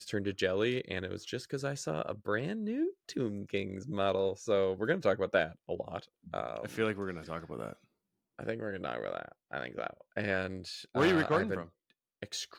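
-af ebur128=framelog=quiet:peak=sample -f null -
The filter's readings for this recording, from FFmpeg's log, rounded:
Integrated loudness:
  I:         -34.4 LUFS
  Threshold: -44.6 LUFS
Loudness range:
  LRA:         6.2 LU
  Threshold: -55.1 LUFS
  LRA low:   -39.2 LUFS
  LRA high:  -33.0 LUFS
Sample peak:
  Peak:      -14.5 dBFS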